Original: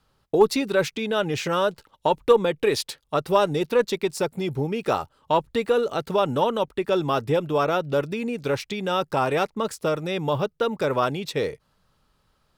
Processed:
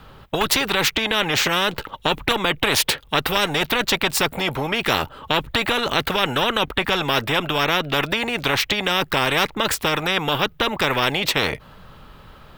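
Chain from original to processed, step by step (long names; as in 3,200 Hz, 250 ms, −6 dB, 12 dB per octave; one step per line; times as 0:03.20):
flat-topped bell 7,300 Hz −11.5 dB
every bin compressed towards the loudest bin 4 to 1
level +2 dB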